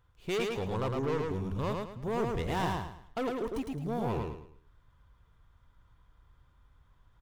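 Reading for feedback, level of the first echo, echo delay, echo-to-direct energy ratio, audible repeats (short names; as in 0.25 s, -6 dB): 32%, -3.0 dB, 0.108 s, -2.5 dB, 4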